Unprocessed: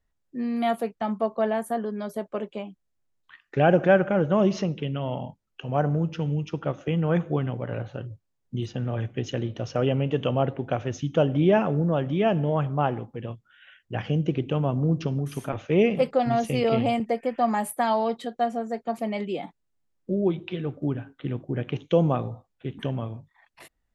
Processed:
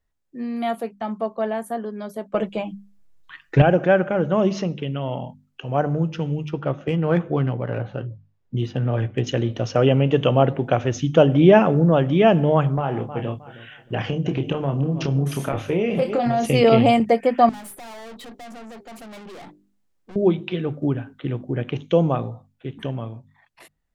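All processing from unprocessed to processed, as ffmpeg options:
ffmpeg -i in.wav -filter_complex "[0:a]asettb=1/sr,asplit=3[link_01][link_02][link_03];[link_01]atrim=end=2.344[link_04];[link_02]atrim=start=2.34:end=3.62,asetpts=PTS-STARTPTS,afade=type=in:duration=0.004:curve=qsin,afade=type=out:start_time=1.276:duration=0.004:curve=qsin,lowshelf=frequency=110:gain=11,acontrast=71,aecho=1:1:6.2:0.58,atrim=end_sample=56448[link_05];[link_03]atrim=start=3.616[link_06];[link_04][link_05]acrossfade=duration=0.004:curve1=hsin:curve2=qsin[link_07];[link_07][link_06]acrossfade=duration=0.004:curve1=qsin:curve2=hsin,asettb=1/sr,asplit=3[link_08][link_09][link_10];[link_08]atrim=end=6.464[link_11];[link_09]atrim=start=6.46:end=9.27,asetpts=PTS-STARTPTS,afade=type=in:duration=0.004:curve=qsin,afade=type=out:start_time=2.806:duration=0.004:curve=qsin,adynamicsmooth=sensitivity=3.5:basefreq=4100,asplit=2[link_12][link_13];[link_13]adelay=15,volume=-13.5dB[link_14];[link_12][link_14]amix=inputs=2:normalize=0,atrim=end_sample=123921[link_15];[link_10]atrim=start=9.266[link_16];[link_11][link_15]acrossfade=duration=0.004:curve1=hsin:curve2=qsin[link_17];[link_17][link_16]acrossfade=duration=0.004:curve1=qsin:curve2=hsin,asettb=1/sr,asplit=3[link_18][link_19][link_20];[link_18]atrim=end=12.754[link_21];[link_19]atrim=start=12.75:end=16.46,asetpts=PTS-STARTPTS,afade=type=in:duration=0.004:curve=qsin,afade=type=out:start_time=3.706:duration=0.004:curve=qsin,aecho=1:1:312|624|936:0.119|0.0357|0.0107,atrim=end_sample=163611,acompressor=threshold=-25dB:ratio=12:attack=3.2:release=140:knee=1:detection=peak,asplit=2[link_22][link_23];[link_23]adelay=29,volume=-7dB[link_24];[link_22][link_24]amix=inputs=2:normalize=0,atrim=end_sample=163611[link_25];[link_20]atrim=start=16.456[link_26];[link_21][link_25]acrossfade=duration=0.004:curve1=hsin:curve2=qsin[link_27];[link_27][link_26]acrossfade=duration=0.004:curve1=qsin:curve2=hsin,asettb=1/sr,asplit=3[link_28][link_29][link_30];[link_28]atrim=end=17.494[link_31];[link_29]atrim=start=17.49:end=20.16,asetpts=PTS-STARTPTS,afade=type=in:duration=0.004:curve=qsin,afade=type=out:start_time=2.666:duration=0.004:curve=qsin,bandreject=frequency=50:width_type=h:width=6,bandreject=frequency=100:width_type=h:width=6,bandreject=frequency=150:width_type=h:width=6,bandreject=frequency=200:width_type=h:width=6,bandreject=frequency=250:width_type=h:width=6,bandreject=frequency=300:width_type=h:width=6,bandreject=frequency=350:width_type=h:width=6,bandreject=frequency=400:width_type=h:width=6,acompressor=threshold=-28dB:ratio=2:attack=3.2:release=140:knee=1:detection=peak,aeval=exprs='(tanh(200*val(0)+0.35)-tanh(0.35))/200':channel_layout=same[link_32];[link_30]atrim=start=20.156[link_33];[link_31][link_32]acrossfade=duration=0.004:curve1=hsin:curve2=qsin[link_34];[link_34][link_33]acrossfade=duration=0.004:curve1=qsin:curve2=hsin,bandreject=frequency=50:width_type=h:width=6,bandreject=frequency=100:width_type=h:width=6,bandreject=frequency=150:width_type=h:width=6,bandreject=frequency=200:width_type=h:width=6,bandreject=frequency=250:width_type=h:width=6,dynaudnorm=framelen=910:gausssize=9:maxgain=11.5dB" out.wav

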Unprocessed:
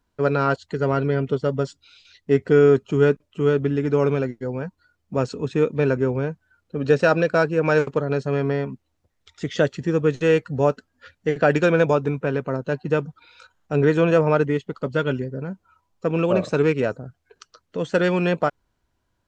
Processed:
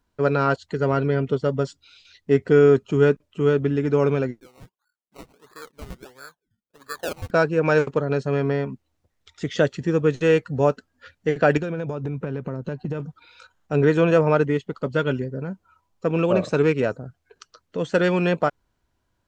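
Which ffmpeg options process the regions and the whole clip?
ffmpeg -i in.wav -filter_complex "[0:a]asettb=1/sr,asplit=3[link_01][link_02][link_03];[link_01]atrim=end=4.404[link_04];[link_02]atrim=start=4.4:end=7.31,asetpts=PTS-STARTPTS,afade=type=in:duration=0.004:curve=qsin,afade=type=out:start_time=2.906:duration=0.004:curve=qsin,agate=range=-8dB:threshold=-53dB:ratio=16:release=100:detection=peak,bandpass=frequency=1700:width_type=q:width=5.1,acrusher=samples=21:mix=1:aa=0.000001:lfo=1:lforange=12.6:lforate=1.5[link_05];[link_03]atrim=start=7.306[link_06];[link_04][link_05]acrossfade=duration=0.004:curve1=hsin:curve2=qsin[link_07];[link_07][link_06]acrossfade=duration=0.004:curve1=qsin:curve2=hsin,asettb=1/sr,asplit=3[link_08][link_09][link_10];[link_08]atrim=end=11.574[link_11];[link_09]atrim=start=11.57:end=13,asetpts=PTS-STARTPTS,afade=type=in:duration=0.004:curve=qsin,afade=type=out:start_time=1.426:duration=0.004:curve=qsin,lowshelf=frequency=320:gain=10,acompressor=threshold=-23dB:ratio=16:attack=3.2:release=140:knee=1:detection=peak[link_12];[link_10]atrim=start=12.996[link_13];[link_11][link_12]acrossfade=duration=0.004:curve1=hsin:curve2=qsin[link_14];[link_14][link_13]acrossfade=duration=0.004:curve1=qsin:curve2=hsin" out.wav

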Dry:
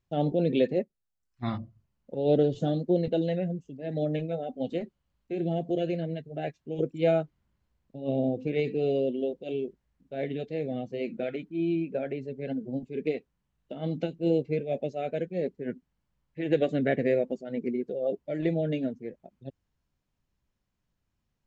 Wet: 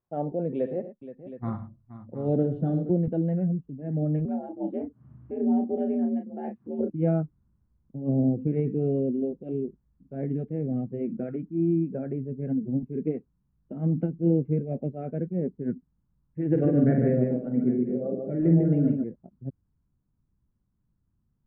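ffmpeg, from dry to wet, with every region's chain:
ffmpeg -i in.wav -filter_complex "[0:a]asettb=1/sr,asplit=3[link_01][link_02][link_03];[link_01]atrim=end=0.544[link_04];[link_02]atrim=start=0.54:end=2.9,asetpts=PTS-STARTPTS,afade=type=in:duration=0.004:curve=qsin,afade=type=out:start_time=2.356:duration=0.004:curve=qsin,bass=frequency=250:gain=-2,treble=frequency=4000:gain=13,aecho=1:1:70|107|474|719:0.224|0.211|0.2|0.2,atrim=end_sample=104076[link_05];[link_03]atrim=start=2.896[link_06];[link_04][link_05]acrossfade=duration=0.004:curve1=hsin:curve2=qsin[link_07];[link_07][link_06]acrossfade=duration=0.004:curve1=qsin:curve2=hsin,asettb=1/sr,asplit=3[link_08][link_09][link_10];[link_08]atrim=end=4.254[link_11];[link_09]atrim=start=4.25:end=6.9,asetpts=PTS-STARTPTS,afade=type=in:duration=0.004:curve=qsin,afade=type=out:start_time=2.646:duration=0.004:curve=qsin,acompressor=mode=upward:threshold=-40dB:ratio=2.5:attack=3.2:release=140:knee=2.83:detection=peak,afreqshift=69,asplit=2[link_12][link_13];[link_13]adelay=34,volume=-5.5dB[link_14];[link_12][link_14]amix=inputs=2:normalize=0,atrim=end_sample=116865[link_15];[link_10]atrim=start=6.896[link_16];[link_11][link_15]acrossfade=duration=0.004:curve1=hsin:curve2=qsin[link_17];[link_17][link_16]acrossfade=duration=0.004:curve1=qsin:curve2=hsin,asettb=1/sr,asplit=3[link_18][link_19][link_20];[link_18]atrim=end=16.504[link_21];[link_19]atrim=start=16.5:end=19.04,asetpts=PTS-STARTPTS,afade=type=in:duration=0.004:curve=qsin,afade=type=out:start_time=2.536:duration=0.004:curve=qsin,asplit=2[link_22][link_23];[link_23]adelay=48,volume=-6dB[link_24];[link_22][link_24]amix=inputs=2:normalize=0,atrim=end_sample=112014,aecho=1:1:55|148|808:0.299|0.596|0.106,atrim=end_sample=112014[link_25];[link_20]atrim=start=19.036[link_26];[link_21][link_25]acrossfade=duration=0.004:curve1=hsin:curve2=qsin[link_27];[link_27][link_26]acrossfade=duration=0.004:curve1=qsin:curve2=hsin,asubboost=boost=11.5:cutoff=180,lowpass=frequency=1300:width=0.5412,lowpass=frequency=1300:width=1.3066,aemphasis=mode=production:type=bsi" out.wav

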